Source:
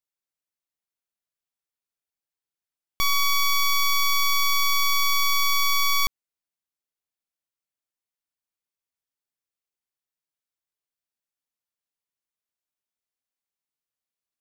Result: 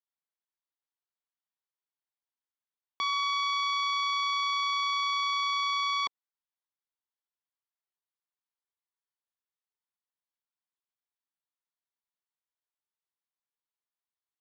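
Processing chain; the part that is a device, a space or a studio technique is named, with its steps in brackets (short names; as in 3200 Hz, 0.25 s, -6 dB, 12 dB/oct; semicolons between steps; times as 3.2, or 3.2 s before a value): phone earpiece (speaker cabinet 440–4200 Hz, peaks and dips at 570 Hz -7 dB, 960 Hz +5 dB, 2500 Hz -7 dB); gain -4 dB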